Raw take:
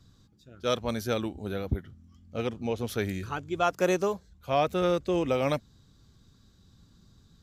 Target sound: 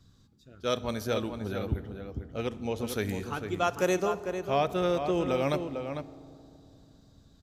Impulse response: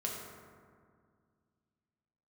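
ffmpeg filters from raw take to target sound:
-filter_complex "[0:a]asettb=1/sr,asplit=3[s0][s1][s2];[s0]atrim=end=2.474[s3];[s1]atrim=start=2.47:end=3.96,asetpts=PTS-STARTPTS,afade=t=in:d=0.004:c=qsin,afade=t=out:st=1.486:d=0.004:c=qsin,equalizer=f=10000:w=0.49:g=4[s4];[s2]atrim=start=3.956[s5];[s3][s4]acrossfade=d=0.004:c1=hsin:c2=qsin[s6];[s6][s5]acrossfade=d=0.004:c1=qsin:c2=hsin,asplit=2[s7][s8];[s8]adelay=449,volume=0.447,highshelf=f=4000:g=-10.1[s9];[s7][s9]amix=inputs=2:normalize=0,asplit=2[s10][s11];[1:a]atrim=start_sample=2205,asetrate=27783,aresample=44100[s12];[s11][s12]afir=irnorm=-1:irlink=0,volume=0.158[s13];[s10][s13]amix=inputs=2:normalize=0,volume=0.708"

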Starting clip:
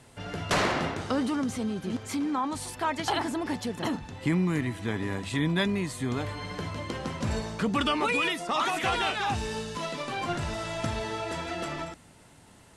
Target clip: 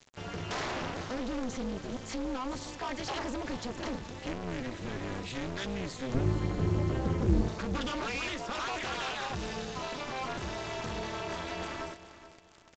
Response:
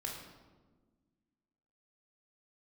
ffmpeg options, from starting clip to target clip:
-filter_complex "[0:a]volume=35.5,asoftclip=hard,volume=0.0282,asettb=1/sr,asplit=3[s0][s1][s2];[s0]atrim=end=6.144[s3];[s1]atrim=start=6.14:end=7.48,asetpts=PTS-STARTPTS,afade=t=in:d=0.004:c=qsin,afade=t=out:st=1.336:d=0.004:c=qsin,aemphasis=mode=reproduction:type=riaa[s4];[s2]atrim=start=7.476[s5];[s3][s4]acrossfade=d=0.004:c1=hsin:c2=qsin[s6];[s6][s5]acrossfade=d=0.004:c1=qsin:c2=hsin,asplit=2[s7][s8];[s8]asoftclip=type=tanh:threshold=0.0708,volume=0.501[s9];[s7][s9]amix=inputs=2:normalize=0,flanger=delay=2.6:depth=1.7:regen=-64:speed=1.6:shape=triangular,acrusher=bits=7:mix=0:aa=0.000001,tremolo=f=260:d=0.974,asplit=2[s10][s11];[s11]aecho=0:1:424|848|1272:0.188|0.0622|0.0205[s12];[s10][s12]amix=inputs=2:normalize=0,volume=1.33" -ar 16000 -c:a pcm_mulaw

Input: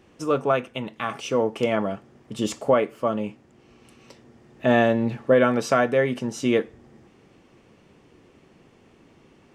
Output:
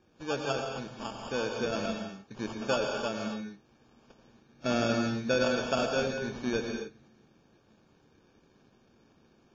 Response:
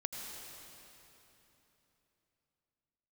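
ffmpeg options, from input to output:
-filter_complex "[0:a]acrusher=samples=22:mix=1:aa=0.000001[s0];[1:a]atrim=start_sample=2205,afade=t=out:st=0.32:d=0.01,atrim=end_sample=14553,asetrate=41895,aresample=44100[s1];[s0][s1]afir=irnorm=-1:irlink=0,volume=0.376" -ar 16000 -c:a wmav2 -b:a 32k

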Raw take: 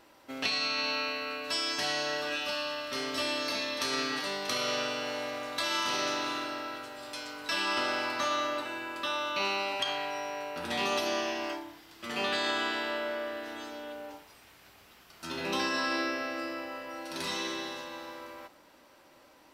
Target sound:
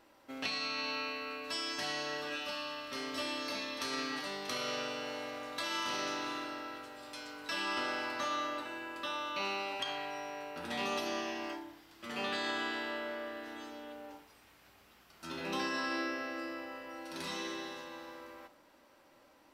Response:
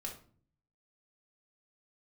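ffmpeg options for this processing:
-filter_complex "[0:a]asplit=2[s0][s1];[1:a]atrim=start_sample=2205,lowpass=3000[s2];[s1][s2]afir=irnorm=-1:irlink=0,volume=0.398[s3];[s0][s3]amix=inputs=2:normalize=0,volume=0.473"

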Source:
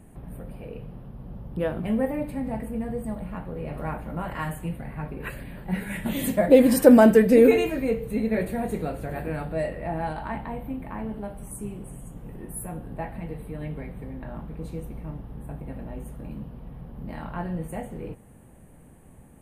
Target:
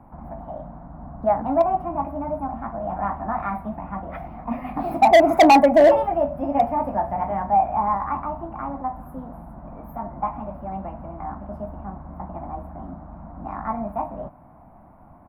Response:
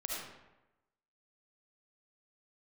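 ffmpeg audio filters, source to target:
-filter_complex "[0:a]firequalizer=gain_entry='entry(210,0);entry(330,-10);entry(550,13);entry(2500,-22);entry(6400,-20)':delay=0.05:min_phase=1,acrossover=split=230|6000[s0][s1][s2];[s1]asoftclip=type=hard:threshold=0.355[s3];[s0][s3][s2]amix=inputs=3:normalize=0,asetrate=56007,aresample=44100"

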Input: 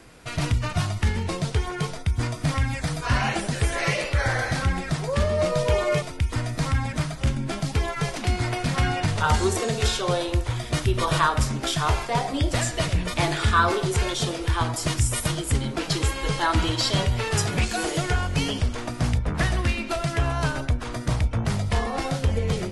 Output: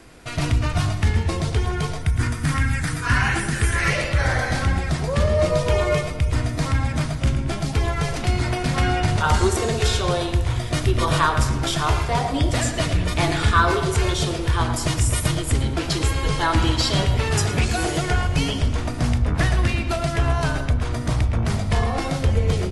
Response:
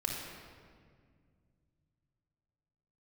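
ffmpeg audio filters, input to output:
-filter_complex "[0:a]asoftclip=type=hard:threshold=0.376,asettb=1/sr,asplit=3[s0][s1][s2];[s0]atrim=end=2.014[s3];[s1]atrim=start=2.01:end=3.9,asetpts=PTS-STARTPTS,afade=t=in:d=0.004:c=qsin,afade=t=out:st=1.886:d=0.004:c=qsin,equalizer=f=630:t=o:w=0.67:g=-10,equalizer=f=1600:t=o:w=0.67:g=7,equalizer=f=4000:t=o:w=0.67:g=-3,equalizer=f=10000:t=o:w=0.67:g=5[s4];[s2]atrim=start=3.896[s5];[s3][s4]acrossfade=d=0.004:c1=hsin:c2=qsin[s6];[s6][s5]acrossfade=d=0.004:c1=qsin:c2=hsin,asplit=2[s7][s8];[s8]adelay=113,lowpass=f=3500:p=1,volume=0.335,asplit=2[s9][s10];[s10]adelay=113,lowpass=f=3500:p=1,volume=0.49,asplit=2[s11][s12];[s12]adelay=113,lowpass=f=3500:p=1,volume=0.49,asplit=2[s13][s14];[s14]adelay=113,lowpass=f=3500:p=1,volume=0.49,asplit=2[s15][s16];[s16]adelay=113,lowpass=f=3500:p=1,volume=0.49[s17];[s7][s9][s11][s13][s15][s17]amix=inputs=6:normalize=0,asplit=2[s18][s19];[1:a]atrim=start_sample=2205,asetrate=37485,aresample=44100,lowshelf=f=430:g=11[s20];[s19][s20]afir=irnorm=-1:irlink=0,volume=0.075[s21];[s18][s21]amix=inputs=2:normalize=0,volume=1.12"

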